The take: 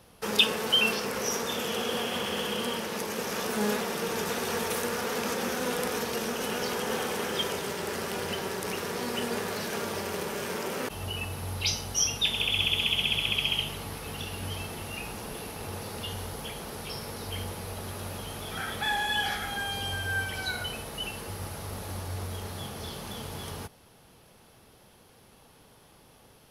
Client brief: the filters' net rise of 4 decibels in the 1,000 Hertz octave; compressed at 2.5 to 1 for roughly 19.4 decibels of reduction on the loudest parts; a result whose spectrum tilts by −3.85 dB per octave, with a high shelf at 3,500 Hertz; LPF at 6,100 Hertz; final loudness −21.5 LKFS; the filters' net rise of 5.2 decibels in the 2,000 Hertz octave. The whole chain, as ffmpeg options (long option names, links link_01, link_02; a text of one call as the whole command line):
ffmpeg -i in.wav -af "lowpass=6100,equalizer=frequency=1000:width_type=o:gain=3.5,equalizer=frequency=2000:width_type=o:gain=8.5,highshelf=frequency=3500:gain=-7.5,acompressor=threshold=-49dB:ratio=2.5,volume=22.5dB" out.wav